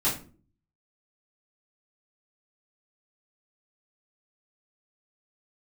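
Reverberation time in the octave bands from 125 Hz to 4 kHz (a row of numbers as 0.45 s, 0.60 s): 0.75 s, 0.65 s, 0.50 s, 0.35 s, 0.30 s, 0.25 s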